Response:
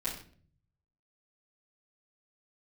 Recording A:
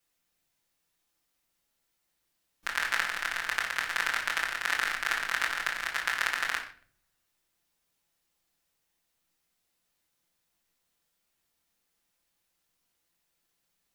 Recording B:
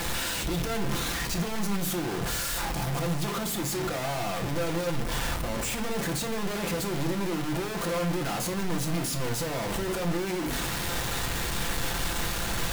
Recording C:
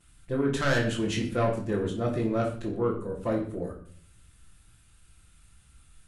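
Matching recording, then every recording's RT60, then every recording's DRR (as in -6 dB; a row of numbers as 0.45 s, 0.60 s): C; 0.50 s, 0.50 s, 0.50 s; -5.0 dB, 3.0 dB, -11.0 dB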